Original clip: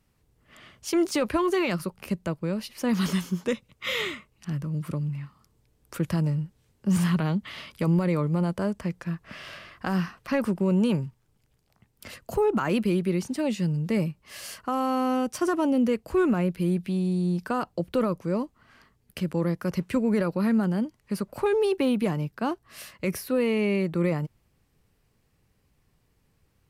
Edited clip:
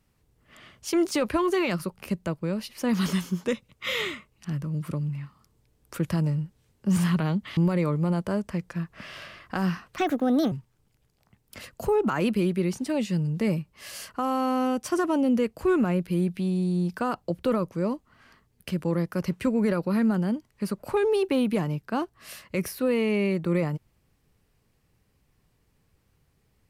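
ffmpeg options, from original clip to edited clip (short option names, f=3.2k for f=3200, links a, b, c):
-filter_complex "[0:a]asplit=4[a][b][c][d];[a]atrim=end=7.572[e];[b]atrim=start=7.878:end=10.294[f];[c]atrim=start=10.29:end=11.01,asetpts=PTS-STARTPTS,asetrate=59094,aresample=44100[g];[d]atrim=start=11.006[h];[e][f]acrossfade=d=0.004:c1=hsin:c2=hsin[i];[i][g]acrossfade=d=0.004:c1=hsin:c2=hsin[j];[j][h]acrossfade=d=0.004:c1=hsin:c2=hsin"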